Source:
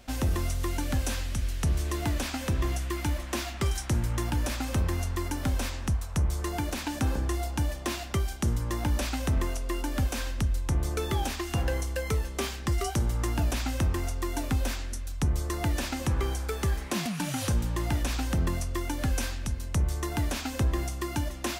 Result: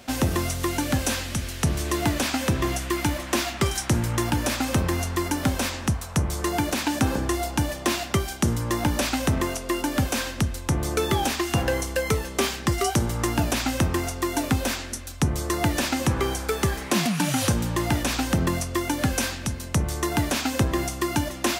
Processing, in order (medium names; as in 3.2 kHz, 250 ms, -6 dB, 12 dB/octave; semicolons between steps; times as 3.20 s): high-pass 110 Hz 12 dB/octave; trim +8 dB